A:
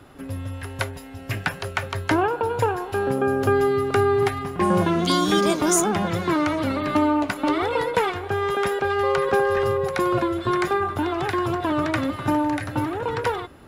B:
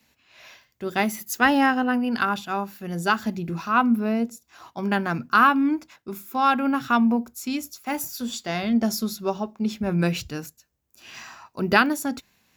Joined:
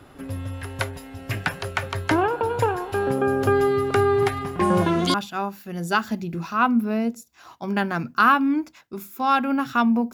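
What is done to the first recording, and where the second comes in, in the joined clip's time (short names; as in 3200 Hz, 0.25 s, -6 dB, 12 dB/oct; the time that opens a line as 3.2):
A
5.14 switch to B from 2.29 s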